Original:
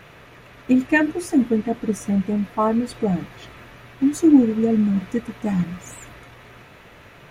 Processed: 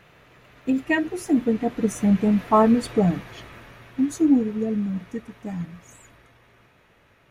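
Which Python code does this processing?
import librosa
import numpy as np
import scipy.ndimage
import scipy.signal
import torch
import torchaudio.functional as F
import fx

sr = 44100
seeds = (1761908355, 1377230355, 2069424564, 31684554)

y = fx.doppler_pass(x, sr, speed_mps=10, closest_m=7.1, pass_at_s=2.56)
y = y * 10.0 ** (3.5 / 20.0)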